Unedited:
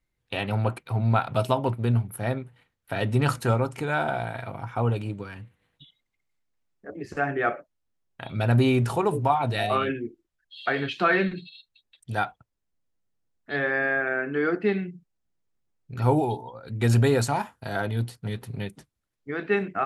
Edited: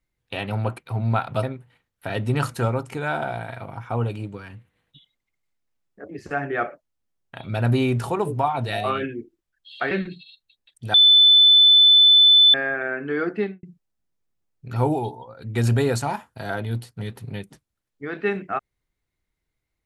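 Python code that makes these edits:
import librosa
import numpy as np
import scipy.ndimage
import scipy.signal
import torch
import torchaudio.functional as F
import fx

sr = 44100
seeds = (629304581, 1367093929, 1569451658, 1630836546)

y = fx.studio_fade_out(x, sr, start_s=14.63, length_s=0.26)
y = fx.edit(y, sr, fx.cut(start_s=1.43, length_s=0.86),
    fx.cut(start_s=10.77, length_s=0.4),
    fx.bleep(start_s=12.2, length_s=1.6, hz=3510.0, db=-9.5), tone=tone)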